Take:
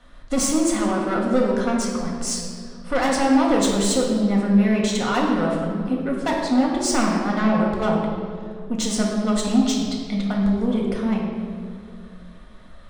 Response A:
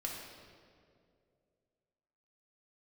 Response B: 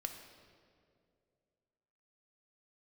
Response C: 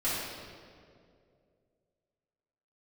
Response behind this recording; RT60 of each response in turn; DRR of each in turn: A; 2.4, 2.4, 2.4 s; -2.5, 4.5, -12.0 dB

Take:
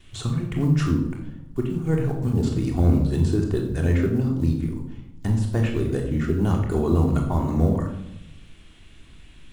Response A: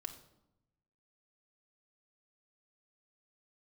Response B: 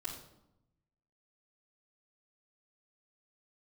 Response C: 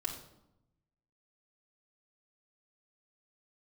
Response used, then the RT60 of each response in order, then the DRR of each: B; 0.85, 0.85, 0.85 s; 3.5, -11.5, -3.0 dB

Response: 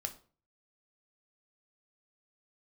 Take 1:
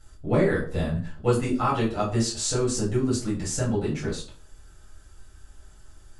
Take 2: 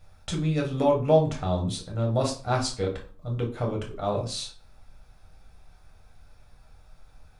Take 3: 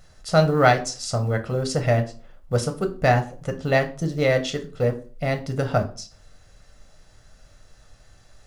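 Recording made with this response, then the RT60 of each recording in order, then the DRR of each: 3; 0.40, 0.40, 0.40 s; -7.5, -0.5, 6.0 dB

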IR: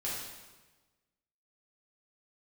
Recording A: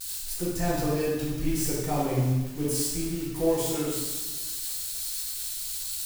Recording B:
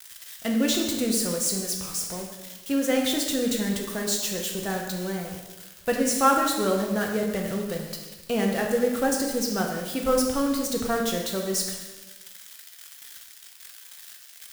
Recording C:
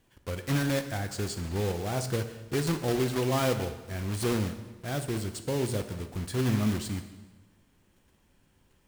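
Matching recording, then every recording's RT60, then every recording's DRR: A; 1.2, 1.2, 1.2 s; -7.5, 0.5, 8.0 dB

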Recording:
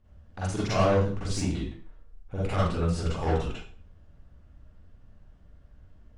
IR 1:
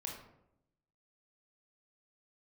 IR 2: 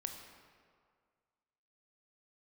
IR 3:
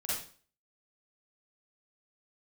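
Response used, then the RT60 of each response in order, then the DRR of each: 3; 0.80, 2.0, 0.45 s; -1.0, 4.0, -9.0 dB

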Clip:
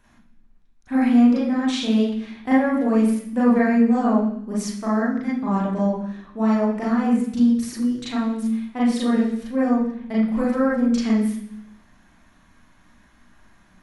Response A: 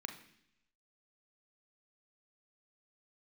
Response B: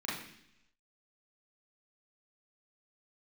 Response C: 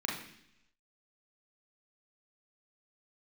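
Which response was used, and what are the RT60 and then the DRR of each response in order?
B; not exponential, 0.70 s, 0.70 s; 5.5, -7.5, -2.5 dB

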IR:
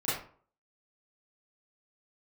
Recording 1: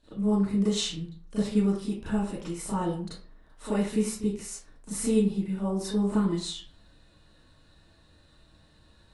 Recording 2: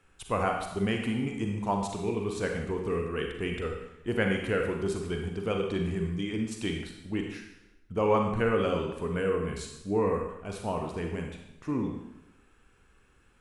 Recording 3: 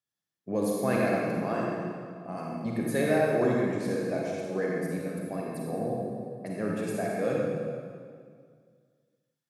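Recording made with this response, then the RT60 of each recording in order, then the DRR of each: 1; 0.45, 0.95, 2.0 s; -12.0, 2.0, -3.5 dB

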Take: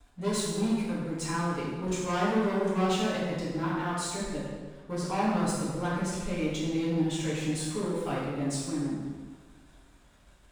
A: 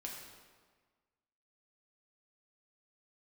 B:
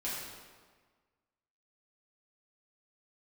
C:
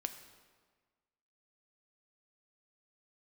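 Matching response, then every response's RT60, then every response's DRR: B; 1.5, 1.5, 1.5 s; -2.0, -9.0, 7.5 dB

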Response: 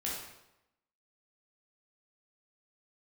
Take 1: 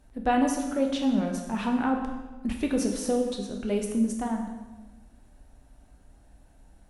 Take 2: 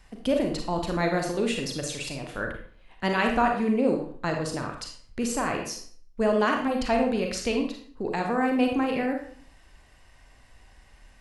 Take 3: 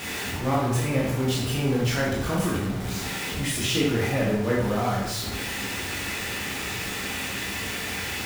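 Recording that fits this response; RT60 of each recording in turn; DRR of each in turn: 3; 1.2, 0.50, 0.90 s; 2.0, 2.5, -5.5 dB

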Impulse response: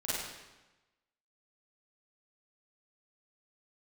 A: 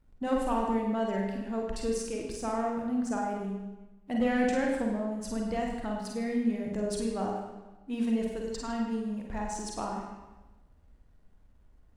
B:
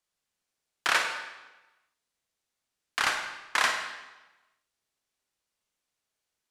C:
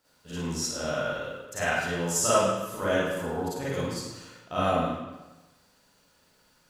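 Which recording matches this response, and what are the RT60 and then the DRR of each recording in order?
C; 1.1, 1.1, 1.1 s; -1.0, 3.5, -11.0 dB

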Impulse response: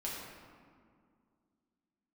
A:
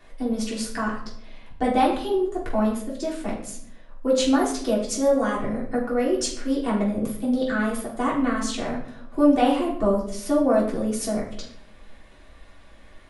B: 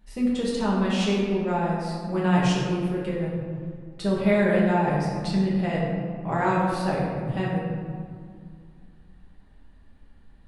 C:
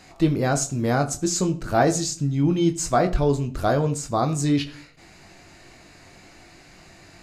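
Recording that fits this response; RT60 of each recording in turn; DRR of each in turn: B; 0.70, 2.1, 0.40 s; -6.0, -6.0, 6.5 dB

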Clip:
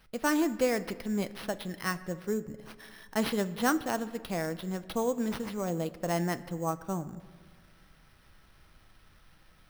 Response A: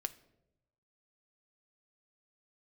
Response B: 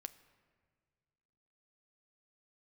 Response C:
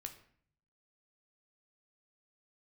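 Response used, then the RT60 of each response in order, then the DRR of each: B; 0.90, 1.8, 0.55 s; 10.0, 11.0, 4.5 dB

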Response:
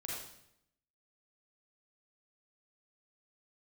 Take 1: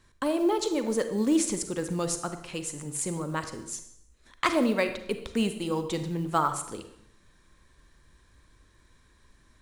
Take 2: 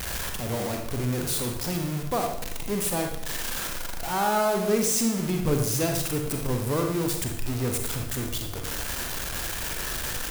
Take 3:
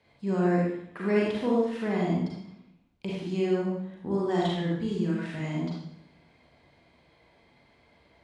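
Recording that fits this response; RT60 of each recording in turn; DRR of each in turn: 3; 0.75, 0.75, 0.75 s; 8.5, 3.0, -5.0 dB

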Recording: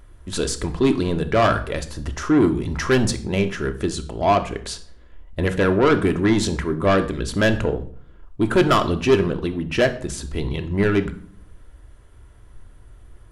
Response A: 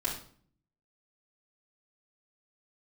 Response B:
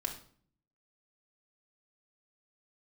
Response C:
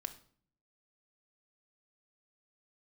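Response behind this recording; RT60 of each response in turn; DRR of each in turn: C; 0.50, 0.50, 0.50 s; -7.0, 1.0, 7.0 dB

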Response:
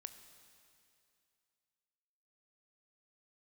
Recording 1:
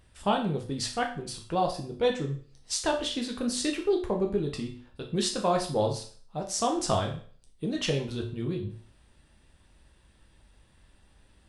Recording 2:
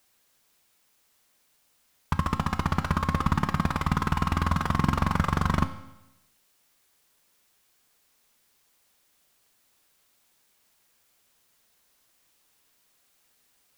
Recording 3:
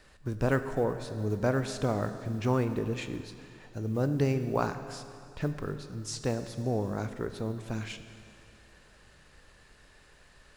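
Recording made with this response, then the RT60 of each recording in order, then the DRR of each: 3; 0.45, 0.95, 2.6 s; 1.0, 9.0, 9.0 dB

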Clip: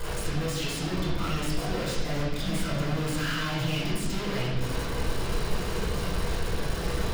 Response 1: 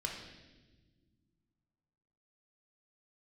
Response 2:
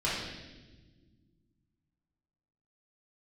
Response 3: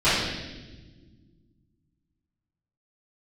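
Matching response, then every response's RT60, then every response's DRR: 2; not exponential, not exponential, not exponential; -0.5, -9.0, -17.0 dB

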